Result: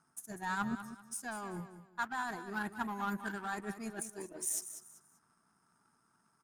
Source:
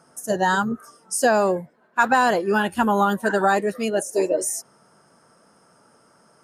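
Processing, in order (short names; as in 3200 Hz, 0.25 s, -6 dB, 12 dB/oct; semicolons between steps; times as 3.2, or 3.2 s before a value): reverse; compressor 10:1, threshold -28 dBFS, peak gain reduction 16 dB; reverse; fixed phaser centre 1300 Hz, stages 4; power-law curve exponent 1.4; feedback echo 0.194 s, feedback 29%, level -11.5 dB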